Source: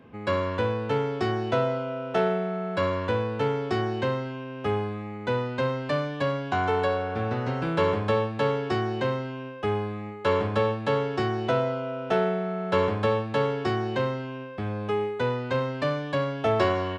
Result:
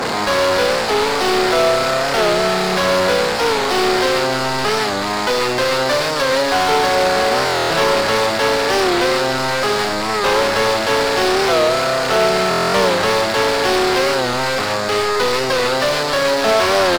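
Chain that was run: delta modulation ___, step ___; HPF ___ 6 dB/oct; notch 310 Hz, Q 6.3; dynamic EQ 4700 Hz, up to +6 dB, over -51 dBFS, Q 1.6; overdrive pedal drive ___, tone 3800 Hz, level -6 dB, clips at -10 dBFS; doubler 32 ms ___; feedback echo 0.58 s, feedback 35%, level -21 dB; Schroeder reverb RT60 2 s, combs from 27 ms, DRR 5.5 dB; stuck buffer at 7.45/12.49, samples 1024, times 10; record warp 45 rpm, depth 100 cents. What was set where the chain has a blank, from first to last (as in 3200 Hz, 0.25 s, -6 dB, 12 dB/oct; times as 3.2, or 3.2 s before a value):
32 kbps, -24 dBFS, 220 Hz, 31 dB, -6 dB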